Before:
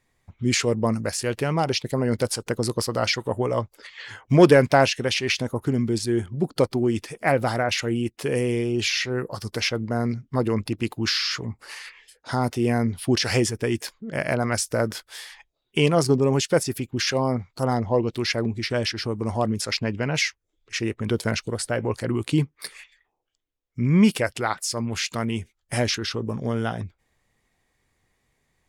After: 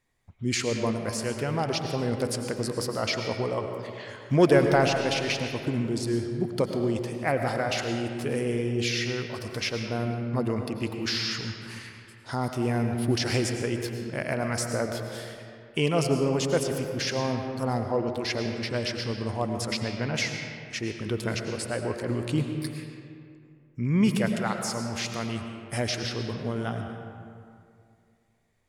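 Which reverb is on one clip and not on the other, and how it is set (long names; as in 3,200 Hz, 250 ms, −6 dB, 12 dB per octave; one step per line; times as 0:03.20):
comb and all-pass reverb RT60 2.4 s, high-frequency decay 0.55×, pre-delay 65 ms, DRR 4.5 dB
level −5.5 dB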